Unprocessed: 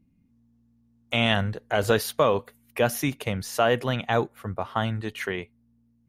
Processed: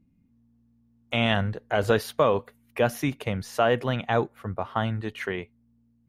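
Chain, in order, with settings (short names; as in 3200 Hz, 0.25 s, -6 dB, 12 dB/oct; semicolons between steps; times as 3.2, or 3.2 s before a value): high shelf 4400 Hz -9 dB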